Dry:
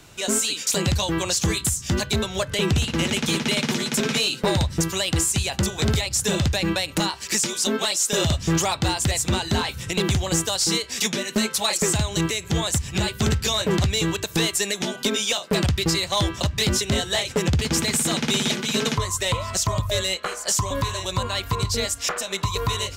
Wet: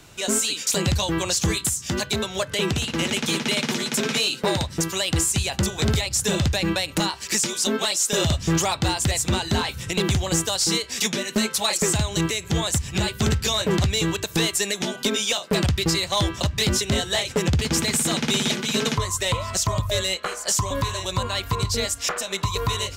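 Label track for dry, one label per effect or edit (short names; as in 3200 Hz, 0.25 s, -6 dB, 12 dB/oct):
1.570000	5.100000	low shelf 100 Hz -12 dB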